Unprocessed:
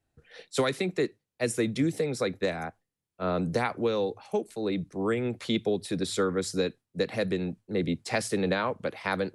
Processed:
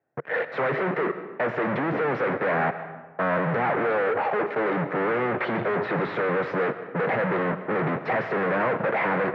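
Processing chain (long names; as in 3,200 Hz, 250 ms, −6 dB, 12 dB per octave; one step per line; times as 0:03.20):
in parallel at +1.5 dB: brickwall limiter −24 dBFS, peak gain reduction 10 dB
on the sum: leveller curve on the samples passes 5
parametric band 480 Hz +8 dB 1.4 octaves
hard clipping −26.5 dBFS, distortion −4 dB
elliptic band-pass filter 140–1,900 Hz, stop band 60 dB
parametric band 240 Hz −7.5 dB 2.3 octaves
on a send at −11 dB: convolution reverb RT60 1.3 s, pre-delay 75 ms
on the sum: level +7.5 dB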